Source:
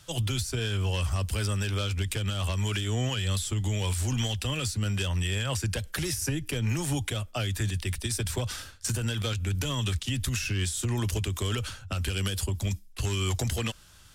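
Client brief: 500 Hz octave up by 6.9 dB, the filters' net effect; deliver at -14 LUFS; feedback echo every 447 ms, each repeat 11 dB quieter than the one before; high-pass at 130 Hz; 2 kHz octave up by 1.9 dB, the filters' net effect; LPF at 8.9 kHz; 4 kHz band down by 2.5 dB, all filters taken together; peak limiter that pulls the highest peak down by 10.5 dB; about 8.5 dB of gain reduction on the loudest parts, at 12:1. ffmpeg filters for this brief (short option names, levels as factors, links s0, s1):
-af "highpass=130,lowpass=8900,equalizer=f=500:t=o:g=8.5,equalizer=f=2000:t=o:g=4,equalizer=f=4000:t=o:g=-5.5,acompressor=threshold=0.0251:ratio=12,alimiter=level_in=2.24:limit=0.0631:level=0:latency=1,volume=0.447,aecho=1:1:447|894|1341:0.282|0.0789|0.0221,volume=18.8"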